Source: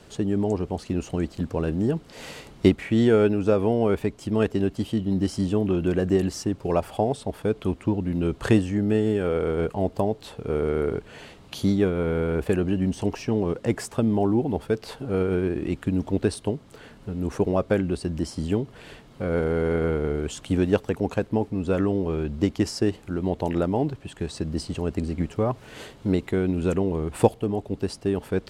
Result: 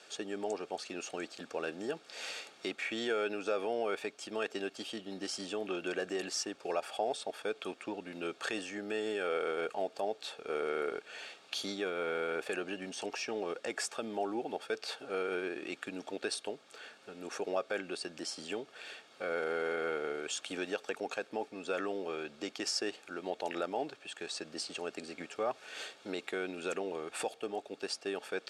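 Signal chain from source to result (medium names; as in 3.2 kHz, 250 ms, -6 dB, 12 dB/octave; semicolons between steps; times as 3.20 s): tilt shelf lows -5 dB, about 1.1 kHz; peak limiter -16.5 dBFS, peak gain reduction 11 dB; band-pass 500–7500 Hz; comb of notches 1 kHz; trim -2 dB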